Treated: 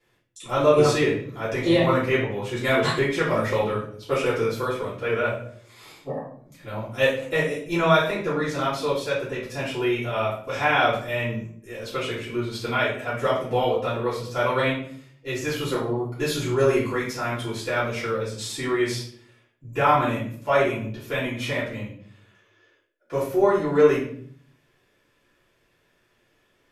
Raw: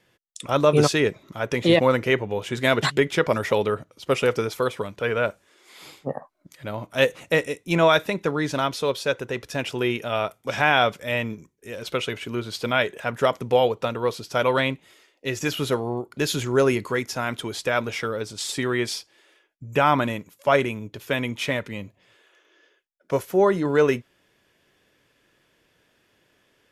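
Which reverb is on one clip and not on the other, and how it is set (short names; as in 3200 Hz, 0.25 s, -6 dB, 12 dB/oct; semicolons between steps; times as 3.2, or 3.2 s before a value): shoebox room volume 76 m³, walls mixed, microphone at 3.1 m; gain -13.5 dB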